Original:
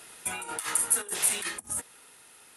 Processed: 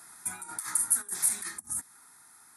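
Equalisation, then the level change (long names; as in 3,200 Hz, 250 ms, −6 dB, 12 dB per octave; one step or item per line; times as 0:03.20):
high-pass filter 120 Hz 6 dB per octave
dynamic equaliser 960 Hz, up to −6 dB, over −51 dBFS, Q 0.76
phaser with its sweep stopped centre 1,200 Hz, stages 4
0.0 dB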